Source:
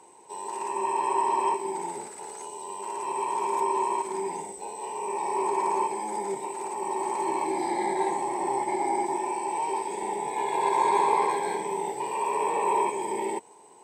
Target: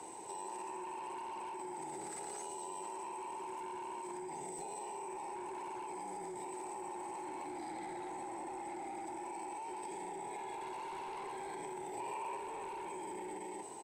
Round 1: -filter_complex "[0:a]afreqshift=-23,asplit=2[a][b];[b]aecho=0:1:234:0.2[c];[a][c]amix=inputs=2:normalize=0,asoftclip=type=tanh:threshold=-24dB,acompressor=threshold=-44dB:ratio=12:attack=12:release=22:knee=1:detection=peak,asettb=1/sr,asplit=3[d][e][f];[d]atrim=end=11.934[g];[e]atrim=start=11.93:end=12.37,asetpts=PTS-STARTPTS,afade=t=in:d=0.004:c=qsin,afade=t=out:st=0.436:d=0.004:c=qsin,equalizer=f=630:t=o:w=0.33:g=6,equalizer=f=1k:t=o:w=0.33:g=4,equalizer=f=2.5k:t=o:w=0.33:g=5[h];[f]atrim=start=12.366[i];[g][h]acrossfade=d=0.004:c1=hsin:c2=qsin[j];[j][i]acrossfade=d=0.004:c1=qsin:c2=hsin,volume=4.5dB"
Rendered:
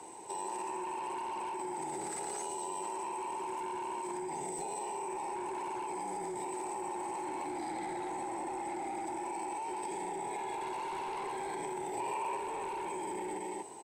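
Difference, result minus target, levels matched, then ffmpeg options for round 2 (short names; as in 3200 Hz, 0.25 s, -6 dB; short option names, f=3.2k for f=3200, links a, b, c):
compressor: peak gain reduction -5.5 dB
-filter_complex "[0:a]afreqshift=-23,asplit=2[a][b];[b]aecho=0:1:234:0.2[c];[a][c]amix=inputs=2:normalize=0,asoftclip=type=tanh:threshold=-24dB,acompressor=threshold=-50dB:ratio=12:attack=12:release=22:knee=1:detection=peak,asettb=1/sr,asplit=3[d][e][f];[d]atrim=end=11.934[g];[e]atrim=start=11.93:end=12.37,asetpts=PTS-STARTPTS,afade=t=in:d=0.004:c=qsin,afade=t=out:st=0.436:d=0.004:c=qsin,equalizer=f=630:t=o:w=0.33:g=6,equalizer=f=1k:t=o:w=0.33:g=4,equalizer=f=2.5k:t=o:w=0.33:g=5[h];[f]atrim=start=12.366[i];[g][h]acrossfade=d=0.004:c1=hsin:c2=qsin[j];[j][i]acrossfade=d=0.004:c1=qsin:c2=hsin,volume=4.5dB"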